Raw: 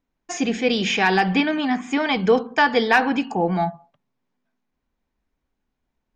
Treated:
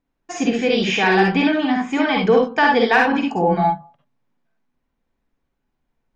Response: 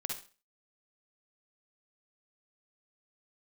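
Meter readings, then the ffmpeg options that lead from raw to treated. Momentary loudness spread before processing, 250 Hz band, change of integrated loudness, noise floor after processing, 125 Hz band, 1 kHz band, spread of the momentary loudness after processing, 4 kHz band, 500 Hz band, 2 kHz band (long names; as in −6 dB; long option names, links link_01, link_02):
7 LU, +3.0 dB, +3.0 dB, −76 dBFS, +2.5 dB, +3.0 dB, 6 LU, +1.0 dB, +3.5 dB, +2.5 dB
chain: -filter_complex "[0:a]highshelf=frequency=4500:gain=-7.5[link_01];[1:a]atrim=start_sample=2205,atrim=end_sample=4410[link_02];[link_01][link_02]afir=irnorm=-1:irlink=0,volume=2.5dB"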